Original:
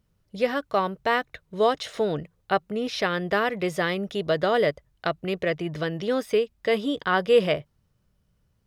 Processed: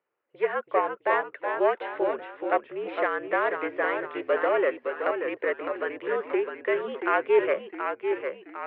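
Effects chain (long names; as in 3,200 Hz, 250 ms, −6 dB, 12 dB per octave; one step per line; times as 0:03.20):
phase distortion by the signal itself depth 0.12 ms
delay with pitch and tempo change per echo 308 ms, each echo −1 semitone, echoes 3, each echo −6 dB
single-sideband voice off tune −55 Hz 460–2,500 Hz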